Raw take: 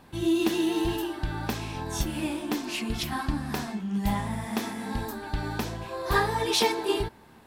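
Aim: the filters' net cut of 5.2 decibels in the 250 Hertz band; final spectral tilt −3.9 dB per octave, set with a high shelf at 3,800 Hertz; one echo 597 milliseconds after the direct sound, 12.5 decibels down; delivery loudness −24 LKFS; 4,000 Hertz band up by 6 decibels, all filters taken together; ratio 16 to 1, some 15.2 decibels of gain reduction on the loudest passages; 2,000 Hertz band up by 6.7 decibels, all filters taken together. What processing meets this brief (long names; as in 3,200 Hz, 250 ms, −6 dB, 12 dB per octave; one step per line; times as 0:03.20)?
parametric band 250 Hz −8 dB
parametric band 2,000 Hz +8 dB
high-shelf EQ 3,800 Hz −4.5 dB
parametric band 4,000 Hz +7.5 dB
downward compressor 16 to 1, threshold −31 dBFS
single-tap delay 597 ms −12.5 dB
level +11 dB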